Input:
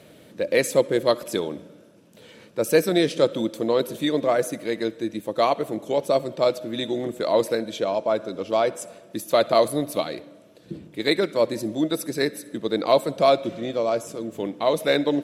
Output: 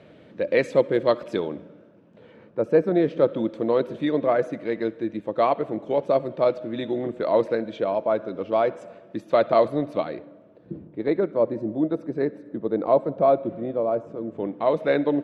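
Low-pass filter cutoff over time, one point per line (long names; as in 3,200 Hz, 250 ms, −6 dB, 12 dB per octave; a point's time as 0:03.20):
0:01.35 2,600 Hz
0:02.84 1,100 Hz
0:03.53 2,100 Hz
0:09.88 2,100 Hz
0:10.91 1,000 Hz
0:14.06 1,000 Hz
0:14.71 1,800 Hz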